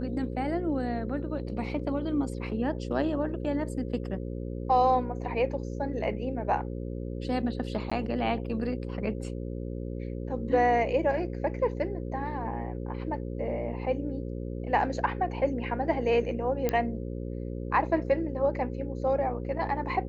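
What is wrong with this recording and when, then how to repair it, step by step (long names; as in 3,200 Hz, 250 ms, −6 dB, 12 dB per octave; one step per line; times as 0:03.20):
mains buzz 60 Hz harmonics 9 −35 dBFS
0:07.90–0:07.92: drop-out 15 ms
0:16.69: click −13 dBFS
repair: click removal
hum removal 60 Hz, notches 9
repair the gap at 0:07.90, 15 ms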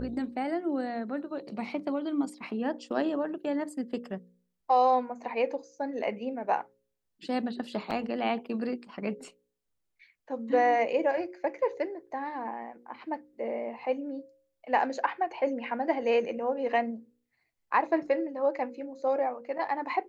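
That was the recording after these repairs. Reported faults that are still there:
none of them is left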